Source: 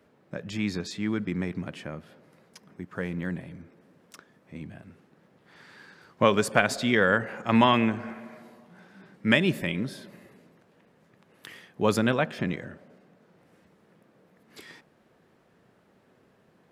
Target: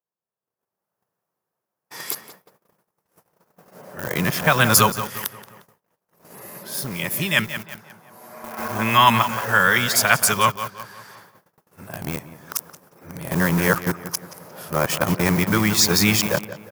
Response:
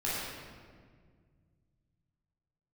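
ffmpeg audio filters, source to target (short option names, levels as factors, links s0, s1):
-filter_complex "[0:a]areverse,highpass=110,acrossover=split=210|1200[s0][s1][s2];[s1]acompressor=threshold=0.0158:ratio=12[s3];[s0][s3][s2]amix=inputs=3:normalize=0,highshelf=f=7000:g=8.5,asplit=2[s4][s5];[s5]adelay=177,lowpass=f=3300:p=1,volume=0.316,asplit=2[s6][s7];[s7]adelay=177,lowpass=f=3300:p=1,volume=0.48,asplit=2[s8][s9];[s9]adelay=177,lowpass=f=3300:p=1,volume=0.48,asplit=2[s10][s11];[s11]adelay=177,lowpass=f=3300:p=1,volume=0.48,asplit=2[s12][s13];[s13]adelay=177,lowpass=f=3300:p=1,volume=0.48[s14];[s4][s6][s8][s10][s12][s14]amix=inputs=6:normalize=0,asplit=2[s15][s16];[s16]aeval=exprs='val(0)*gte(abs(val(0)),0.0168)':c=same,volume=0.631[s17];[s15][s17]amix=inputs=2:normalize=0,agate=range=0.02:threshold=0.00158:ratio=16:detection=peak,aexciter=amount=1.9:drive=9.8:freq=5300,equalizer=f=250:t=o:w=1:g=-9,equalizer=f=1000:t=o:w=1:g=7,equalizer=f=2000:t=o:w=1:g=-4,equalizer=f=8000:t=o:w=1:g=-8,dynaudnorm=f=530:g=3:m=6.68,volume=0.891"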